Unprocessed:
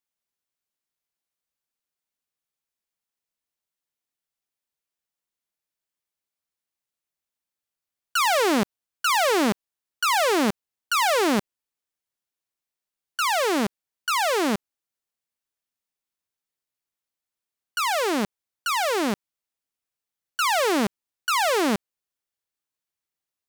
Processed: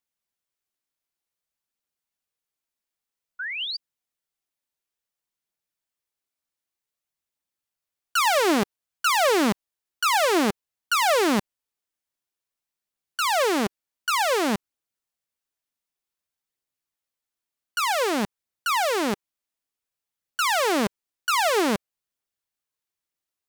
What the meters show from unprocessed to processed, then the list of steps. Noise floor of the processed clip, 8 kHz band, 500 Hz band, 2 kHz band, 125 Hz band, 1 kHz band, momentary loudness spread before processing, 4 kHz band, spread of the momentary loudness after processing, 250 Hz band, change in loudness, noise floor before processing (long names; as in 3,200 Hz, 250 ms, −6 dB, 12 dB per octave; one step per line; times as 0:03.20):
below −85 dBFS, 0.0 dB, +0.5 dB, +0.5 dB, −0.5 dB, 0.0 dB, 12 LU, +0.5 dB, 12 LU, −0.5 dB, 0.0 dB, below −85 dBFS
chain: sound drawn into the spectrogram rise, 0:03.39–0:03.77, 1,400–4,900 Hz −30 dBFS
phase shifter 0.54 Hz, delay 3.6 ms, feedback 21%